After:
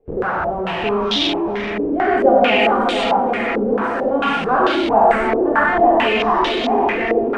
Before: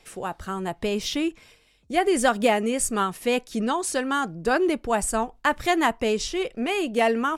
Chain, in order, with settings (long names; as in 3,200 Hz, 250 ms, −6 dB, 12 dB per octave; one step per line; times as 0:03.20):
fade-out on the ending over 0.77 s
0:02.67–0:04.11: downward compressor, threshold −26 dBFS, peak gain reduction 7.5 dB
on a send: echo with a time of its own for lows and highs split 430 Hz, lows 632 ms, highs 435 ms, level −5.5 dB
on the sum: reverb whose tail is shaped and stops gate 210 ms flat, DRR −6.5 dB
in parallel at −6 dB: comparator with hysteresis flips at −32 dBFS
on the sum: low-pass on a step sequencer 4.5 Hz 470–3,600 Hz
level −6 dB